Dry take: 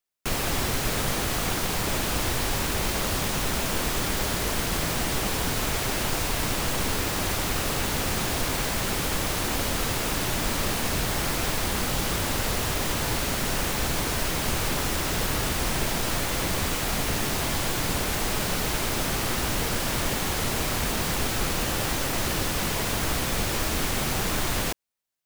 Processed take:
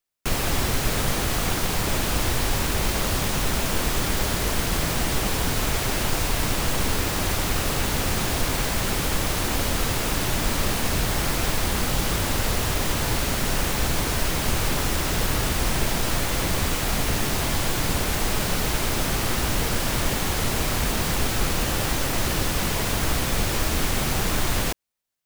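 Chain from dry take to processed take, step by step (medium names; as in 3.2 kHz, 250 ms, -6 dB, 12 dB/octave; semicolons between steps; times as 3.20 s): bass shelf 110 Hz +4.5 dB; trim +1.5 dB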